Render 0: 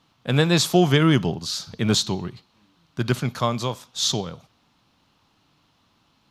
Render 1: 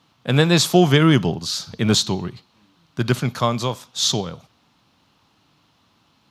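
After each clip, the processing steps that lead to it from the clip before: HPF 57 Hz; gain +3 dB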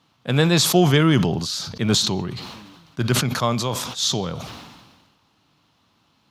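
sustainer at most 40 dB/s; gain -2.5 dB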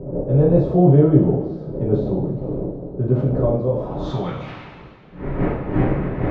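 wind noise 330 Hz -27 dBFS; low-pass sweep 510 Hz -> 2100 Hz, 3.74–4.3; two-slope reverb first 0.51 s, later 3.2 s, from -19 dB, DRR -6.5 dB; gain -8 dB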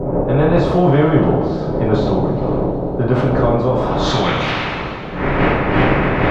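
spectral compressor 2:1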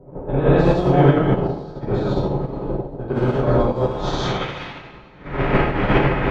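non-linear reverb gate 0.18 s rising, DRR -4.5 dB; upward expander 2.5:1, over -18 dBFS; gain -4.5 dB

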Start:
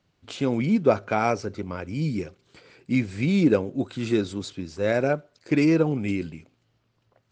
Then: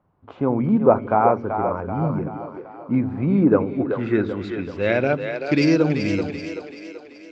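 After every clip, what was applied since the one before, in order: low-pass sweep 1000 Hz -> 5500 Hz, 3.38–5.81; split-band echo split 320 Hz, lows 89 ms, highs 0.383 s, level -7 dB; gain +2 dB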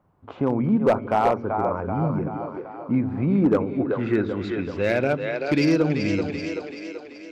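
in parallel at 0 dB: compressor 16:1, threshold -26 dBFS, peak gain reduction 18 dB; on the sum: hard clip -8 dBFS, distortion -19 dB; gain -4 dB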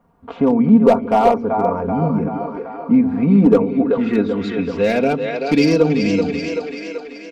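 dynamic EQ 1600 Hz, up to -7 dB, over -42 dBFS, Q 1.6; comb 4.3 ms, depth 81%; gain +5 dB

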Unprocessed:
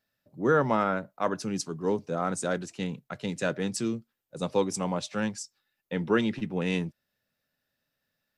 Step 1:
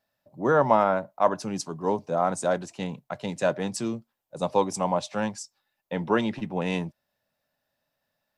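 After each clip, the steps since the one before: band shelf 780 Hz +8.5 dB 1.1 oct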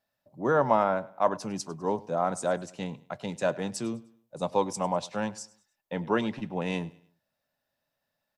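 feedback echo 0.101 s, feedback 38%, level -21 dB; gain -3 dB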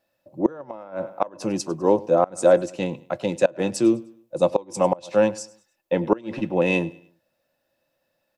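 small resonant body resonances 340/520/2600 Hz, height 13 dB, ringing for 60 ms; flipped gate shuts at -11 dBFS, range -25 dB; gain +5.5 dB

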